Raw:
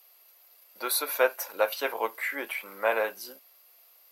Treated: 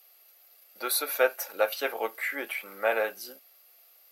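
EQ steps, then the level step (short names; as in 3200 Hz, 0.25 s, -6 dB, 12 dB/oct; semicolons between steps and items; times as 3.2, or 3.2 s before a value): Butterworth band-stop 1000 Hz, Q 5.3; 0.0 dB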